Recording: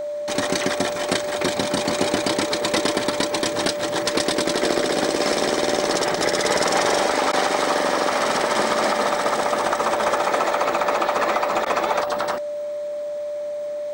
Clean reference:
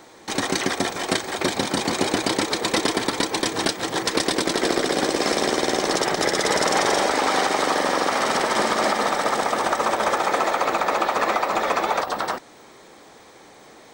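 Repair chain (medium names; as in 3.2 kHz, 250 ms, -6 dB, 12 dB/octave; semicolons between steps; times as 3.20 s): band-stop 590 Hz, Q 30; interpolate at 7.32/11.65 s, 10 ms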